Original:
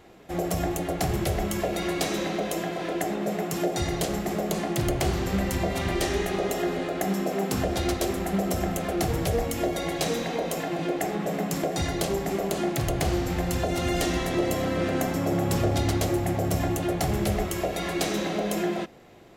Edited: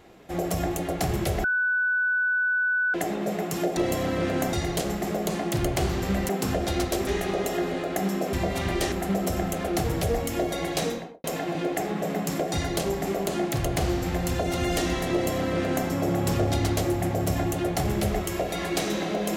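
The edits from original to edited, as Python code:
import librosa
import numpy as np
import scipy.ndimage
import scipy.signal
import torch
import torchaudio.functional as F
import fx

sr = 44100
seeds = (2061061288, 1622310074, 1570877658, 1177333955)

y = fx.studio_fade_out(x, sr, start_s=10.05, length_s=0.43)
y = fx.edit(y, sr, fx.bleep(start_s=1.44, length_s=1.5, hz=1490.0, db=-21.0),
    fx.swap(start_s=5.53, length_s=0.59, other_s=7.38, other_length_s=0.78),
    fx.duplicate(start_s=14.36, length_s=0.76, to_s=3.77), tone=tone)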